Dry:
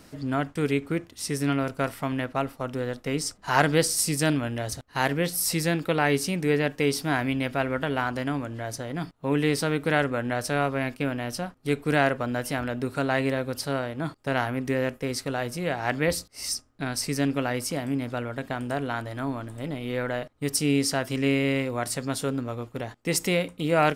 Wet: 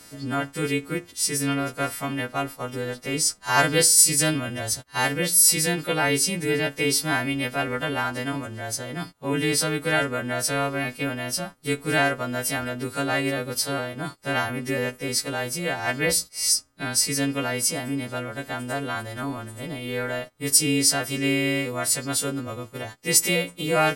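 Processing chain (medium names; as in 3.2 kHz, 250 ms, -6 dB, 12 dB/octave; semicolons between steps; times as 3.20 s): partials quantised in pitch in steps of 2 st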